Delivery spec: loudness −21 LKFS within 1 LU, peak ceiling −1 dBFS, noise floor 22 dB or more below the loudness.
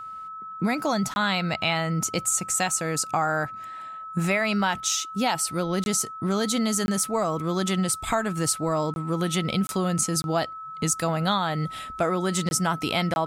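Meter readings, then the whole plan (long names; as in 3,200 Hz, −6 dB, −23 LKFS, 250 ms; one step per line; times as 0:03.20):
number of dropouts 8; longest dropout 21 ms; interfering tone 1,300 Hz; level of the tone −35 dBFS; integrated loudness −25.5 LKFS; sample peak −11.0 dBFS; target loudness −21.0 LKFS
→ repair the gap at 0:01.14/0:05.84/0:06.86/0:08.94/0:09.67/0:10.22/0:12.49/0:13.14, 21 ms
notch filter 1,300 Hz, Q 30
level +4.5 dB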